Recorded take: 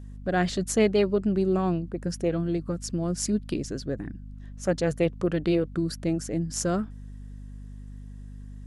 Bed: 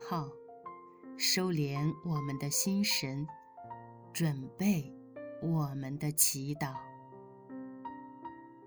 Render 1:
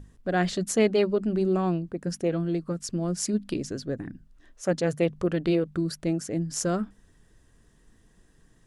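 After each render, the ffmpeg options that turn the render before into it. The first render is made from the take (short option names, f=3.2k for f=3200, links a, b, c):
-af "bandreject=f=50:t=h:w=6,bandreject=f=100:t=h:w=6,bandreject=f=150:t=h:w=6,bandreject=f=200:t=h:w=6,bandreject=f=250:t=h:w=6"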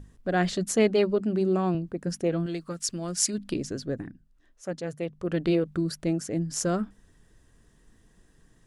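-filter_complex "[0:a]asettb=1/sr,asplit=3[a][b][c];[a]atrim=end=1.204[d];[b]atrim=start=1.2:end=1.75,asetpts=PTS-STARTPTS,afade=t=in:d=0.004:c=qsin,afade=t=out:st=0.546:d=0.004:c=qsin,highpass=110[e];[c]atrim=start=1.746[f];[d][e]acrossfade=d=0.004:c1=hsin:c2=qsin[g];[g][f]acrossfade=d=0.004:c1=qsin:c2=hsin,asettb=1/sr,asplit=3[h][i][j];[h]atrim=end=2.464[k];[i]atrim=start=2.46:end=3.38,asetpts=PTS-STARTPTS,afade=t=in:d=0.004:c=qsin,afade=t=out:st=0.916:d=0.004:c=qsin,tiltshelf=f=970:g=-6.5[l];[j]atrim=start=3.376[m];[k][l]acrossfade=d=0.004:c1=hsin:c2=qsin[n];[n][m]acrossfade=d=0.004:c1=qsin:c2=hsin,asplit=3[o][p][q];[o]atrim=end=4.14,asetpts=PTS-STARTPTS,afade=t=out:st=4.01:d=0.13:silence=0.398107[r];[p]atrim=start=4.14:end=5.22,asetpts=PTS-STARTPTS,volume=-8dB[s];[q]atrim=start=5.22,asetpts=PTS-STARTPTS,afade=t=in:d=0.13:silence=0.398107[t];[r][s][t]concat=n=3:v=0:a=1"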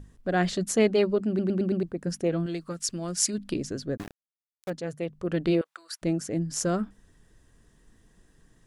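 -filter_complex "[0:a]asettb=1/sr,asplit=3[a][b][c];[a]atrim=end=3.974[d];[b]atrim=start=3.97:end=4.7,asetpts=PTS-STARTPTS,afade=t=in:d=0.004:c=qsin,afade=t=out:st=0.726:d=0.004:c=qsin,aeval=exprs='val(0)*gte(abs(val(0)),0.0168)':c=same[e];[c]atrim=start=4.696[f];[d][e]acrossfade=d=0.004:c1=hsin:c2=qsin[g];[g][f]acrossfade=d=0.004:c1=qsin:c2=hsin,asettb=1/sr,asplit=3[h][i][j];[h]atrim=end=5.614[k];[i]atrim=start=5.61:end=6.02,asetpts=PTS-STARTPTS,afade=t=in:d=0.004:c=qsin,afade=t=out:st=0.406:d=0.004:c=qsin,highpass=f=830:w=0.5412,highpass=f=830:w=1.3066[l];[j]atrim=start=6.016[m];[k][l]acrossfade=d=0.004:c1=hsin:c2=qsin[n];[n][m]acrossfade=d=0.004:c1=qsin:c2=hsin,asplit=6[o][p][q][r][s][t];[o]atrim=end=1.392[u];[p]atrim=start=1.278:end=1.392[v];[q]atrim=start=1.278:end=1.392[w];[r]atrim=start=1.278:end=1.392[x];[s]atrim=start=1.278:end=1.392[y];[t]atrim=start=1.828[z];[u][v]acrossfade=d=0.004:c1=hsin:c2=hsin[aa];[aa][w]acrossfade=d=0.004:c1=hsin:c2=hsin[ab];[ab][x]acrossfade=d=0.004:c1=hsin:c2=hsin[ac];[ac][y]acrossfade=d=0.004:c1=hsin:c2=hsin[ad];[ad][z]acrossfade=d=0.004:c1=hsin:c2=hsin"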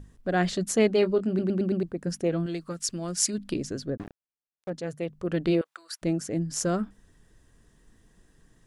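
-filter_complex "[0:a]asettb=1/sr,asplit=3[a][b][c];[a]atrim=end=1.004[d];[b]atrim=start=1:end=1.43,asetpts=PTS-STARTPTS,afade=t=in:d=0.004:c=qsin,afade=t=out:st=0.426:d=0.004:c=qsin,asplit=2[e][f];[f]adelay=22,volume=-10.5dB[g];[e][g]amix=inputs=2:normalize=0,atrim=end_sample=18963[h];[c]atrim=start=1.426[i];[d][h]acrossfade=d=0.004:c1=hsin:c2=qsin[j];[j][i]acrossfade=d=0.004:c1=qsin:c2=hsin,asettb=1/sr,asplit=3[k][l][m];[k]atrim=end=3.904[n];[l]atrim=start=3.9:end=4.74,asetpts=PTS-STARTPTS,afade=t=in:d=0.004:c=qsin,afade=t=out:st=0.836:d=0.004:c=qsin,lowpass=f=1.1k:p=1[o];[m]atrim=start=4.736[p];[n][o]acrossfade=d=0.004:c1=hsin:c2=qsin[q];[q][p]acrossfade=d=0.004:c1=qsin:c2=hsin"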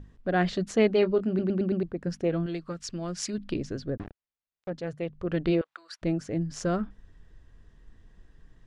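-af "lowpass=4k,asubboost=boost=2:cutoff=120"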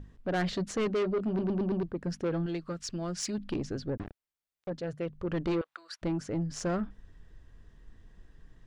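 -af "asoftclip=type=tanh:threshold=-25dB"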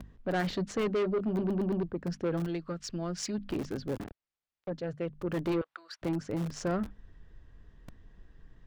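-filter_complex "[0:a]acrossover=split=120|1500[a][b][c];[a]aeval=exprs='(mod(100*val(0)+1,2)-1)/100':c=same[d];[c]adynamicsmooth=sensitivity=7:basefreq=6.2k[e];[d][b][e]amix=inputs=3:normalize=0"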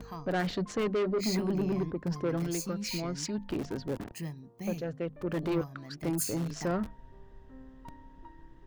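-filter_complex "[1:a]volume=-7dB[a];[0:a][a]amix=inputs=2:normalize=0"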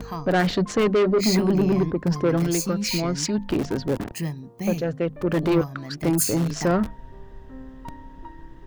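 -af "volume=10dB"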